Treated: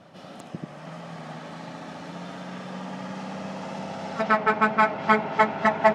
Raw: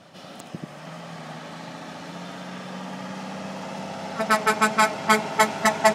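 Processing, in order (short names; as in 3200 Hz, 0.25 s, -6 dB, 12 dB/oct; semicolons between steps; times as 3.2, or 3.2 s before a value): treble ducked by the level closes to 2100 Hz, closed at -19.5 dBFS; mismatched tape noise reduction decoder only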